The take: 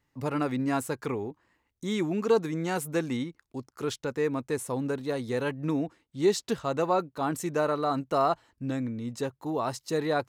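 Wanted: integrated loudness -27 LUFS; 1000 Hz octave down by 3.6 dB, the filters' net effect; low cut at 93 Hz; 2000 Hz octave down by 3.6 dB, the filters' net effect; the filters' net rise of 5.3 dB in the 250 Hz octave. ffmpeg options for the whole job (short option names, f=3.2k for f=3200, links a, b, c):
-af "highpass=93,equalizer=f=250:t=o:g=7,equalizer=f=1k:t=o:g=-5,equalizer=f=2k:t=o:g=-3,volume=1dB"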